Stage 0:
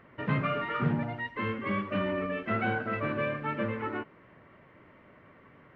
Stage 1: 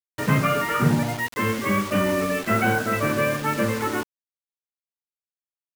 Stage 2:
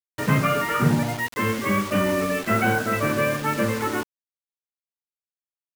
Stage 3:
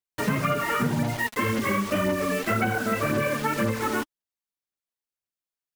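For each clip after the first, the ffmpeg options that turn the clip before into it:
-af "acrusher=bits=6:mix=0:aa=0.000001,volume=2.66"
-af anull
-af "aphaser=in_gain=1:out_gain=1:delay=4.8:decay=0.45:speed=1.9:type=sinusoidal,acompressor=threshold=0.0891:ratio=6"

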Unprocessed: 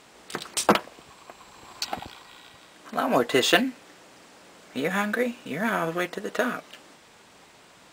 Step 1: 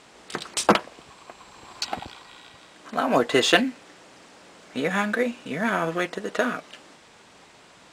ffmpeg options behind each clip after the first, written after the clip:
-af "lowpass=9300,volume=1.19"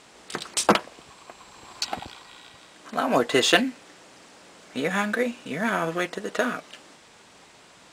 -af "highshelf=f=5300:g=4.5,volume=0.891"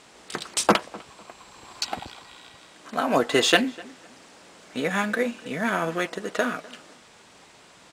-filter_complex "[0:a]asplit=2[s0][s1];[s1]adelay=251,lowpass=f=2300:p=1,volume=0.0891,asplit=2[s2][s3];[s3]adelay=251,lowpass=f=2300:p=1,volume=0.3[s4];[s0][s2][s4]amix=inputs=3:normalize=0"

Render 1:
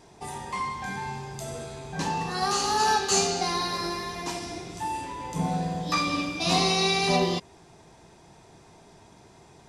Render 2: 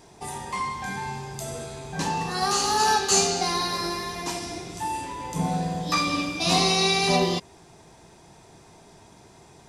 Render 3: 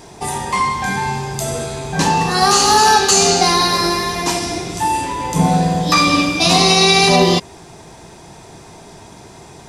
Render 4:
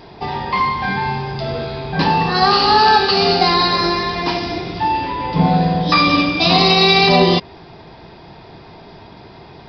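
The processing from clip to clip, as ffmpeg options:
-af "highshelf=f=8300:g=6.5,volume=1.19"
-af "alimiter=level_in=4.47:limit=0.891:release=50:level=0:latency=1,volume=0.891"
-af "aresample=11025,aresample=44100"

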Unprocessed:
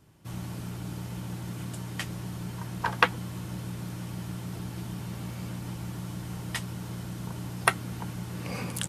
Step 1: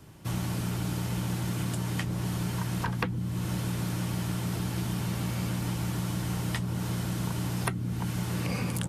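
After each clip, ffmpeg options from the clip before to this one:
-filter_complex "[0:a]acrossover=split=330|1300[s0][s1][s2];[s0]acompressor=threshold=0.0141:ratio=4[s3];[s1]acompressor=threshold=0.00316:ratio=4[s4];[s2]acompressor=threshold=0.00447:ratio=4[s5];[s3][s4][s5]amix=inputs=3:normalize=0,volume=2.66"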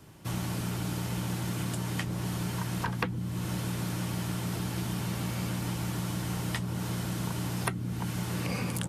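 -af "lowshelf=f=150:g=-4"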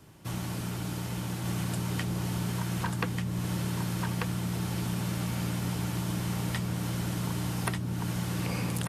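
-af "aecho=1:1:1190:0.708,volume=0.841"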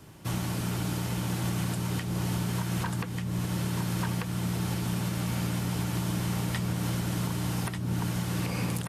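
-af "alimiter=level_in=1.06:limit=0.0631:level=0:latency=1:release=260,volume=0.944,volume=1.58"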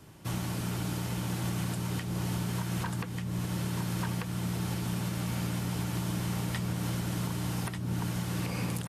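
-af "aresample=32000,aresample=44100,volume=0.75"

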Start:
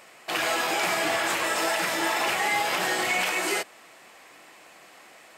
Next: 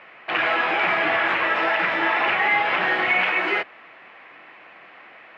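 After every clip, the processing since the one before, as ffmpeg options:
-filter_complex "[0:a]lowpass=f=2600:w=0.5412,lowpass=f=2600:w=1.3066,acrossover=split=110|1100[s0][s1][s2];[s2]acontrast=50[s3];[s0][s1][s3]amix=inputs=3:normalize=0,volume=1.26"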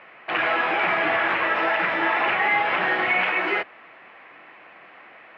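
-af "highshelf=f=4500:g=-9"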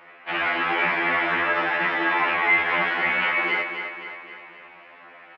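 -filter_complex "[0:a]asplit=2[s0][s1];[s1]aecho=0:1:263|526|789|1052|1315|1578:0.398|0.207|0.108|0.056|0.0291|0.0151[s2];[s0][s2]amix=inputs=2:normalize=0,afftfilt=real='re*2*eq(mod(b,4),0)':imag='im*2*eq(mod(b,4),0)':win_size=2048:overlap=0.75,volume=1.19"

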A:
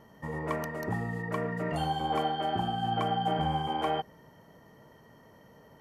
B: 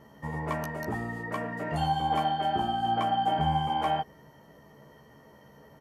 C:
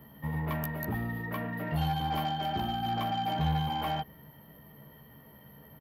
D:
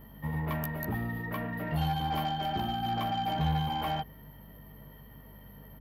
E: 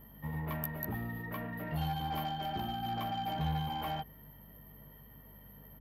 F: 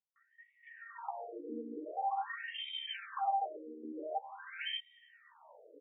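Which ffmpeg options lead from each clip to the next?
-filter_complex "[0:a]asplit=2[s0][s1];[s1]adelay=14,volume=0.708[s2];[s0][s2]amix=inputs=2:normalize=0"
-filter_complex "[0:a]firequalizer=gain_entry='entry(170,0);entry(390,-8);entry(3500,-1);entry(7300,-28);entry(12000,13)':delay=0.05:min_phase=1,acrossover=split=110[s0][s1];[s1]asoftclip=type=tanh:threshold=0.0355[s2];[s0][s2]amix=inputs=2:normalize=0,volume=1.5"
-af "aeval=exprs='val(0)+0.00251*(sin(2*PI*50*n/s)+sin(2*PI*2*50*n/s)/2+sin(2*PI*3*50*n/s)/3+sin(2*PI*4*50*n/s)/4+sin(2*PI*5*50*n/s)/5)':c=same"
-af "equalizer=f=13000:w=4.9:g=9,volume=0.562"
-filter_complex "[0:a]acrossover=split=180|1400[s0][s1][s2];[s1]adelay=160[s3];[s2]adelay=770[s4];[s0][s3][s4]amix=inputs=3:normalize=0,acompressor=threshold=0.0126:ratio=6,afftfilt=real='re*between(b*sr/1024,340*pow(2700/340,0.5+0.5*sin(2*PI*0.46*pts/sr))/1.41,340*pow(2700/340,0.5+0.5*sin(2*PI*0.46*pts/sr))*1.41)':imag='im*between(b*sr/1024,340*pow(2700/340,0.5+0.5*sin(2*PI*0.46*pts/sr))/1.41,340*pow(2700/340,0.5+0.5*sin(2*PI*0.46*pts/sr))*1.41)':win_size=1024:overlap=0.75,volume=3.55"

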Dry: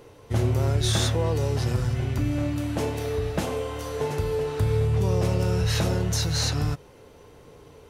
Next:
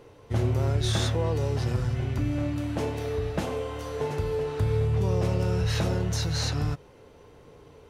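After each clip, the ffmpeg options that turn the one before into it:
-af "highshelf=f=6600:g=-8,volume=0.794"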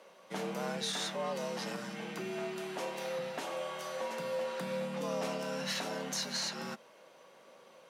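-af "highpass=f=820:p=1,alimiter=level_in=1.19:limit=0.0631:level=0:latency=1:release=261,volume=0.841,afreqshift=82"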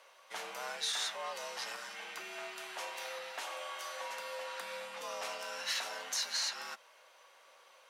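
-af "highpass=950,volume=1.19"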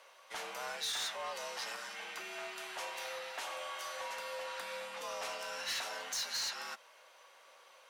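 -af "asoftclip=type=tanh:threshold=0.0237,volume=1.12"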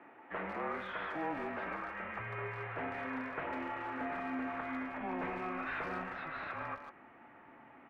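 -filter_complex "[0:a]highpass=f=380:t=q:w=0.5412,highpass=f=380:t=q:w=1.307,lowpass=f=2400:t=q:w=0.5176,lowpass=f=2400:t=q:w=0.7071,lowpass=f=2400:t=q:w=1.932,afreqshift=-260,asplit=2[s0][s1];[s1]adelay=150,highpass=300,lowpass=3400,asoftclip=type=hard:threshold=0.0106,volume=0.398[s2];[s0][s2]amix=inputs=2:normalize=0,asubboost=boost=3.5:cutoff=180,volume=1.68"

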